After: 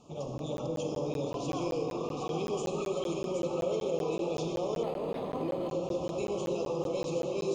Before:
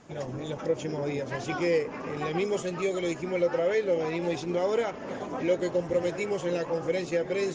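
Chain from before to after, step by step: elliptic band-stop 1.2–2.6 kHz, stop band 60 dB; de-hum 60.51 Hz, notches 8; peak limiter -25 dBFS, peak gain reduction 9 dB; two-band feedback delay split 1.2 kHz, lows 317 ms, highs 769 ms, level -5 dB; on a send at -3.5 dB: reverberation RT60 1.5 s, pre-delay 38 ms; on the sum: crackling interface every 0.19 s, samples 512, zero, from 0.38 s; 4.83–5.69 s: decimation joined by straight lines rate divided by 6×; trim -2.5 dB

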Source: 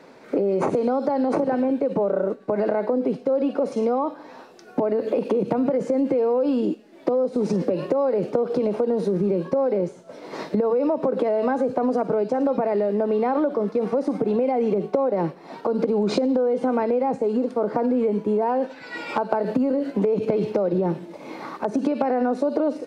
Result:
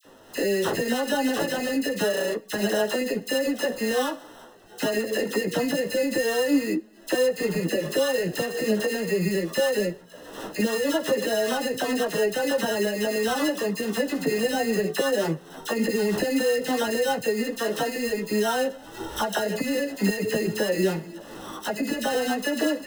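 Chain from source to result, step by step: sample-rate reducer 2.3 kHz, jitter 0%; phase dispersion lows, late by 50 ms, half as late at 1.6 kHz; chorus voices 6, 0.28 Hz, delay 14 ms, depth 4.7 ms

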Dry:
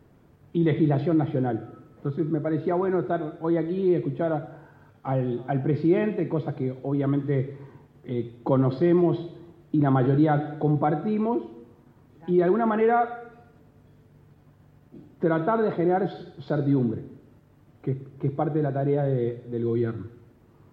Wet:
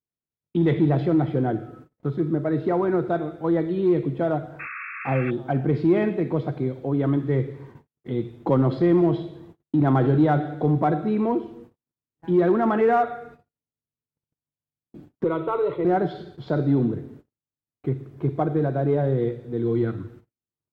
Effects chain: gate -47 dBFS, range -45 dB; in parallel at -10.5 dB: hard clipper -19 dBFS, distortion -13 dB; 4.59–5.31 s: on the sum: painted sound noise 1.1–2.7 kHz -35 dBFS; 15.24–15.85 s: static phaser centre 1.1 kHz, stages 8

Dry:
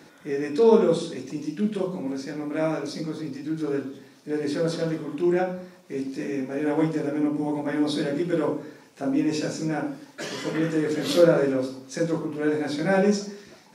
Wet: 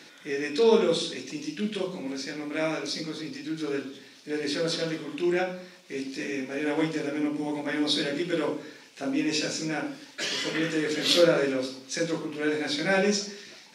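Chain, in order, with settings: frequency weighting D; trim -3 dB

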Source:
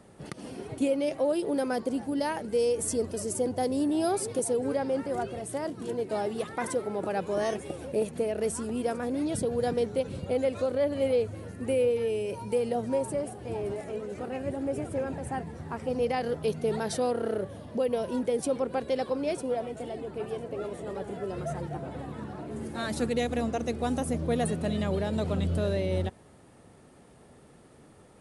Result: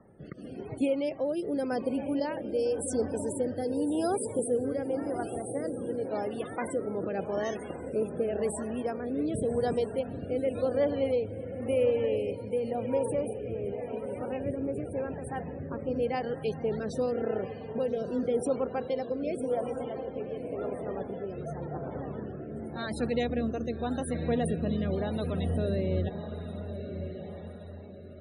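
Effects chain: echo that smears into a reverb 1166 ms, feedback 42%, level -8 dB; rotary cabinet horn 0.9 Hz; loudest bins only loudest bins 64

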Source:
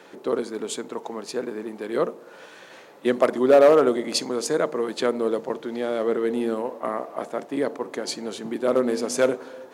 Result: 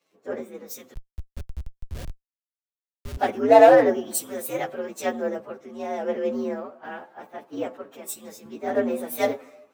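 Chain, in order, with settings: frequency axis rescaled in octaves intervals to 121%; 0.94–3.17 s: Schmitt trigger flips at -25.5 dBFS; three bands expanded up and down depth 70%; trim -2 dB

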